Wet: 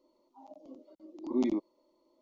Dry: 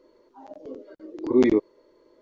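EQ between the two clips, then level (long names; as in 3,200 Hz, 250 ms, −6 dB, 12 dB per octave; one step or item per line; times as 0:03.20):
low-shelf EQ 69 Hz −10 dB
phaser with its sweep stopped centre 440 Hz, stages 6
−7.0 dB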